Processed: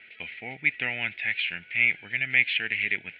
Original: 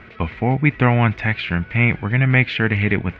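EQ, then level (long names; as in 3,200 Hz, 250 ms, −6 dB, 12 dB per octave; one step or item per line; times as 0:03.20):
resonant band-pass 2,700 Hz, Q 1.4
phaser with its sweep stopped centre 2,700 Hz, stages 4
0.0 dB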